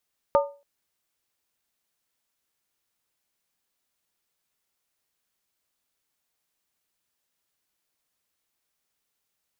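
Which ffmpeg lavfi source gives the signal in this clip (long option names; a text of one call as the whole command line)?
ffmpeg -f lavfi -i "aevalsrc='0.2*pow(10,-3*t/0.34)*sin(2*PI*567*t)+0.126*pow(10,-3*t/0.269)*sin(2*PI*903.8*t)+0.0794*pow(10,-3*t/0.233)*sin(2*PI*1211.1*t)':duration=0.28:sample_rate=44100" out.wav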